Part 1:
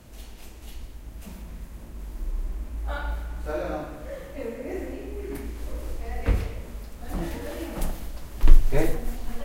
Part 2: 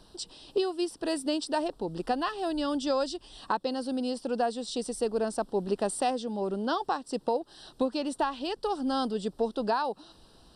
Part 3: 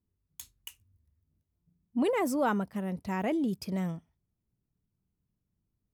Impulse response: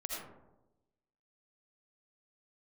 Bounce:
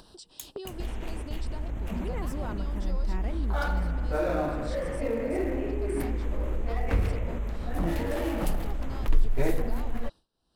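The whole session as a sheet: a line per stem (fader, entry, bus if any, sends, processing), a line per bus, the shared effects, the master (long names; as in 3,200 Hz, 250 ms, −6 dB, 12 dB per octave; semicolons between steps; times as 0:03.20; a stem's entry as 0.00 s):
−10.0 dB, 0.65 s, no send, adaptive Wiener filter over 9 samples; noise gate with hold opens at −34 dBFS; envelope flattener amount 50%
−9.5 dB, 0.00 s, no send, downward compressor, threshold −33 dBFS, peak gain reduction 10.5 dB
−6.0 dB, 0.00 s, no send, downward compressor, threshold −30 dBFS, peak gain reduction 6.5 dB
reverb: not used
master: noise gate with hold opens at −36 dBFS; upward compression, threshold −30 dBFS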